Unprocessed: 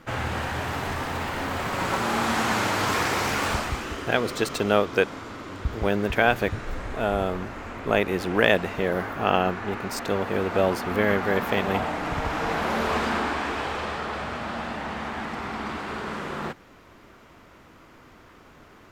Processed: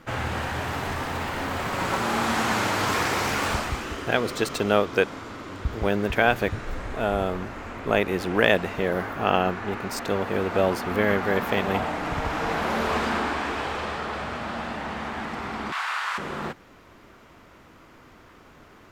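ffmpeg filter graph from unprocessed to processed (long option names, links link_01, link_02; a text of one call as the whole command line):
ffmpeg -i in.wav -filter_complex "[0:a]asettb=1/sr,asplit=3[link_01][link_02][link_03];[link_01]atrim=end=15.724[link_04];[link_02]atrim=start=15.72:end=16.18,asetpts=PTS-STARTPTS,afade=type=in:duration=0.004:curve=qsin,afade=type=out:start_time=0.456:duration=0.004:curve=qsin,highpass=frequency=980:width=0.5412,highpass=frequency=980:width=1.3066,acontrast=69,asplit=2[link_05][link_06];[link_06]adelay=30,volume=-5.5dB[link_07];[link_05][link_07]amix=inputs=2:normalize=0,atrim=end_sample=20286[link_08];[link_03]atrim=start=16.176[link_09];[link_04][link_08]acrossfade=duration=0.004:curve1=hsin:curve2=qsin[link_10];[link_10][link_09]acrossfade=duration=0.004:curve1=qsin:curve2=hsin" out.wav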